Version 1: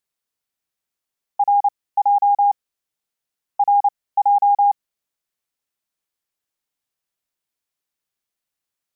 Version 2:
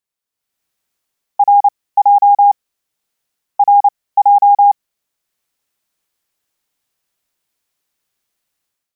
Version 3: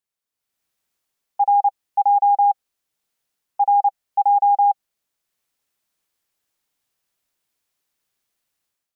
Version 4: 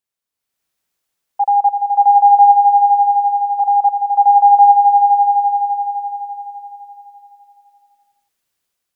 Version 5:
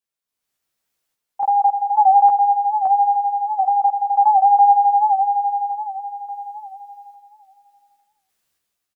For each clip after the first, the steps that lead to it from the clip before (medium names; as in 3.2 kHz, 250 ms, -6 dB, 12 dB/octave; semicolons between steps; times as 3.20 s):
level rider gain up to 12.5 dB; trim -2.5 dB
peak limiter -13.5 dBFS, peak gain reduction 9 dB; dynamic bell 790 Hz, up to +6 dB, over -30 dBFS, Q 6.3; trim -3 dB
echo with a slow build-up 85 ms, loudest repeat 5, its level -13 dB; trim +1.5 dB
random-step tremolo; doubling 14 ms -3 dB; warped record 78 rpm, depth 100 cents